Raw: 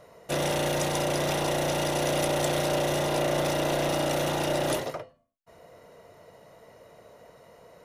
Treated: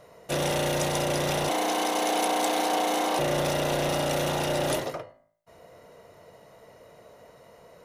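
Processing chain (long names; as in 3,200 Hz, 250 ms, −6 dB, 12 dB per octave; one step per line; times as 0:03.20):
0:01.49–0:03.19: frequency shifter +160 Hz
hum removal 54 Hz, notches 39
level +1 dB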